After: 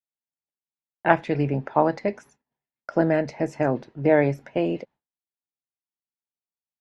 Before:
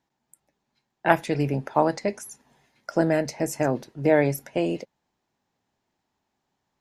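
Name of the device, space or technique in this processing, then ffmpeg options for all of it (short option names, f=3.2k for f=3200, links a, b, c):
hearing-loss simulation: -af "lowpass=2.9k,agate=range=-33dB:threshold=-45dB:ratio=3:detection=peak,volume=1dB"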